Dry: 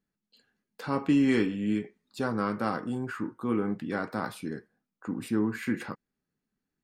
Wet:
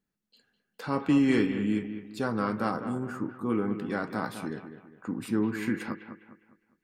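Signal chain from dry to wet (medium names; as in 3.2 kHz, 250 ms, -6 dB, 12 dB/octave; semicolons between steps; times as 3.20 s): 2.71–3.50 s: high-order bell 2.7 kHz -8.5 dB; on a send: bucket-brigade echo 203 ms, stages 4096, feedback 38%, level -10 dB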